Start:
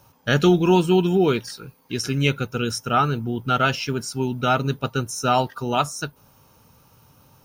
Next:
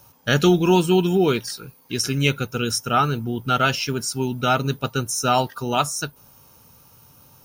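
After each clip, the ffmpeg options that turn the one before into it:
-af "highshelf=f=5.2k:g=8.5"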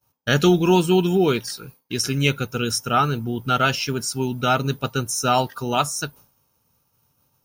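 -af "agate=range=-33dB:threshold=-40dB:ratio=3:detection=peak"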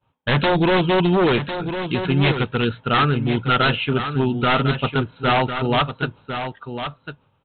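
-af "aresample=8000,aeval=exprs='0.158*(abs(mod(val(0)/0.158+3,4)-2)-1)':c=same,aresample=44100,aecho=1:1:1052:0.355,volume=4.5dB"

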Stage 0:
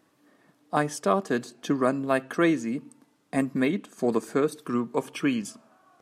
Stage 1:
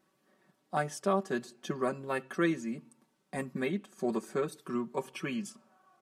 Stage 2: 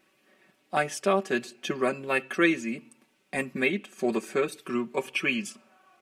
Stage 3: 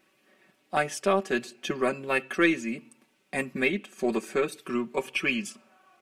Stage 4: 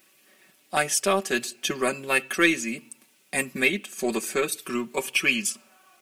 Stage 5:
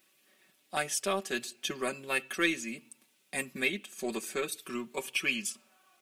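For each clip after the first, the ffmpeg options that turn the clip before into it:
-af "aecho=1:1:5.3:0.86,volume=-9dB"
-af "equalizer=f=160:t=o:w=0.67:g=-8,equalizer=f=1k:t=o:w=0.67:g=-4,equalizer=f=2.5k:t=o:w=0.67:g=11,volume=6dB"
-af "aeval=exprs='0.398*(cos(1*acos(clip(val(0)/0.398,-1,1)))-cos(1*PI/2))+0.00562*(cos(6*acos(clip(val(0)/0.398,-1,1)))-cos(6*PI/2))':c=same"
-af "crystalizer=i=4:c=0"
-af "equalizer=f=3.6k:t=o:w=0.43:g=3.5,volume=-8.5dB"

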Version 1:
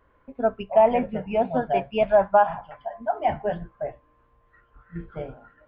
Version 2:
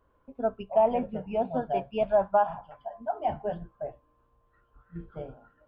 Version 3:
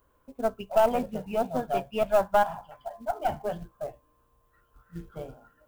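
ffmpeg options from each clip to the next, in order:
-af "equalizer=f=2k:w=2.2:g=-10.5,volume=-5dB"
-af "aemphasis=mode=production:type=75kf,acrusher=bits=6:mode=log:mix=0:aa=0.000001,aeval=exprs='0.266*(cos(1*acos(clip(val(0)/0.266,-1,1)))-cos(1*PI/2))+0.0266*(cos(4*acos(clip(val(0)/0.266,-1,1)))-cos(4*PI/2))':c=same"

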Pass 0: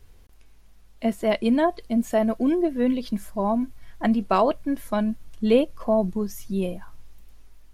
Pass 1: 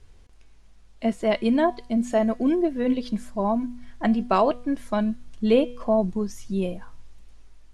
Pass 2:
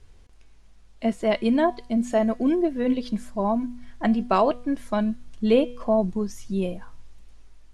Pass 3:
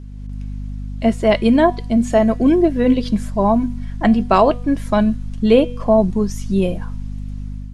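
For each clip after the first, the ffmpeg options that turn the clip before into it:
-af "lowpass=f=9.2k:w=0.5412,lowpass=f=9.2k:w=1.3066,bandreject=f=244:t=h:w=4,bandreject=f=488:t=h:w=4,bandreject=f=732:t=h:w=4,bandreject=f=976:t=h:w=4,bandreject=f=1.22k:t=h:w=4,bandreject=f=1.464k:t=h:w=4,bandreject=f=1.708k:t=h:w=4,bandreject=f=1.952k:t=h:w=4,bandreject=f=2.196k:t=h:w=4,bandreject=f=2.44k:t=h:w=4,bandreject=f=2.684k:t=h:w=4,bandreject=f=2.928k:t=h:w=4,bandreject=f=3.172k:t=h:w=4,bandreject=f=3.416k:t=h:w=4,bandreject=f=3.66k:t=h:w=4,bandreject=f=3.904k:t=h:w=4,bandreject=f=4.148k:t=h:w=4,bandreject=f=4.392k:t=h:w=4,bandreject=f=4.636k:t=h:w=4,bandreject=f=4.88k:t=h:w=4,bandreject=f=5.124k:t=h:w=4,bandreject=f=5.368k:t=h:w=4,bandreject=f=5.612k:t=h:w=4,bandreject=f=5.856k:t=h:w=4,bandreject=f=6.1k:t=h:w=4,bandreject=f=6.344k:t=h:w=4,bandreject=f=6.588k:t=h:w=4,bandreject=f=6.832k:t=h:w=4,bandreject=f=7.076k:t=h:w=4,bandreject=f=7.32k:t=h:w=4,bandreject=f=7.564k:t=h:w=4,bandreject=f=7.808k:t=h:w=4,bandreject=f=8.052k:t=h:w=4,bandreject=f=8.296k:t=h:w=4"
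-af anull
-af "aeval=exprs='val(0)+0.02*(sin(2*PI*50*n/s)+sin(2*PI*2*50*n/s)/2+sin(2*PI*3*50*n/s)/3+sin(2*PI*4*50*n/s)/4+sin(2*PI*5*50*n/s)/5)':c=same,dynaudnorm=f=100:g=5:m=7dB,volume=1.5dB"

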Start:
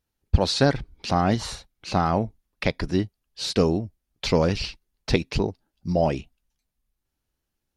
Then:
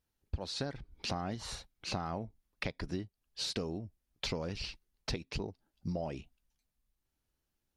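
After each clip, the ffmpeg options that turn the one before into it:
-af "acompressor=threshold=-30dB:ratio=12,volume=-3.5dB"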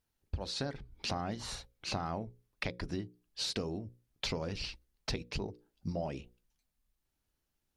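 -af "bandreject=f=60:t=h:w=6,bandreject=f=120:t=h:w=6,bandreject=f=180:t=h:w=6,bandreject=f=240:t=h:w=6,bandreject=f=300:t=h:w=6,bandreject=f=360:t=h:w=6,bandreject=f=420:t=h:w=6,bandreject=f=480:t=h:w=6,bandreject=f=540:t=h:w=6,volume=1dB"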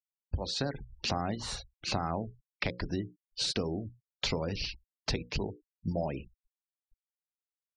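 -filter_complex "[0:a]afftfilt=real='re*gte(hypot(re,im),0.00398)':imag='im*gte(hypot(re,im),0.00398)':win_size=1024:overlap=0.75,acrossover=split=350|1200[a][b][c];[a]acompressor=mode=upward:threshold=-50dB:ratio=2.5[d];[d][b][c]amix=inputs=3:normalize=0,volume=4dB"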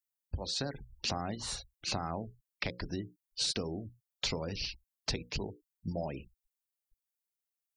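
-af "highshelf=f=6.7k:g=12,volume=-4dB"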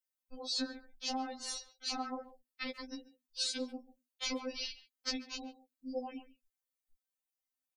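-filter_complex "[0:a]asplit=2[a][b];[b]adelay=140,highpass=300,lowpass=3.4k,asoftclip=type=hard:threshold=-27dB,volume=-15dB[c];[a][c]amix=inputs=2:normalize=0,afftfilt=real='re*3.46*eq(mod(b,12),0)':imag='im*3.46*eq(mod(b,12),0)':win_size=2048:overlap=0.75"

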